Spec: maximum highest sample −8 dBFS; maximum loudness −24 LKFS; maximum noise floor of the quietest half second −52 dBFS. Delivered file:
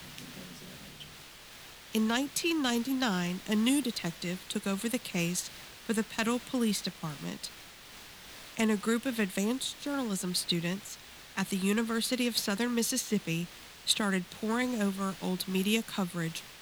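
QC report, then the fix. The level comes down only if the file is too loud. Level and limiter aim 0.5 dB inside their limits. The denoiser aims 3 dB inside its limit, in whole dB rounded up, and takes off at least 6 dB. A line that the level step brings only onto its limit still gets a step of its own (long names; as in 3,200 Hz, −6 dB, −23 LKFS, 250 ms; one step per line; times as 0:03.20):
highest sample −12.5 dBFS: in spec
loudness −31.5 LKFS: in spec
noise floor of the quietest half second −50 dBFS: out of spec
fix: broadband denoise 6 dB, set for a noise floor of −50 dBFS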